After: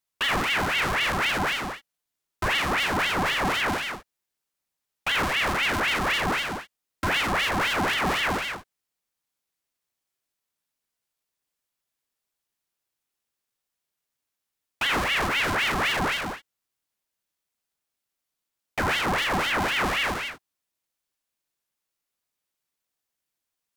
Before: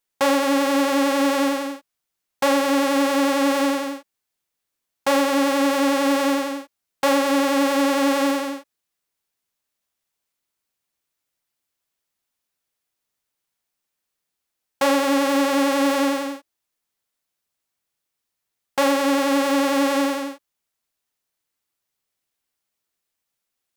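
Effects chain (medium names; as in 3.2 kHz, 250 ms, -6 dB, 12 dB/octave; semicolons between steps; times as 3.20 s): Chebyshev shaper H 5 -15 dB, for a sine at -7 dBFS; ring modulator with a swept carrier 1.5 kHz, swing 70%, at 3.9 Hz; trim -6 dB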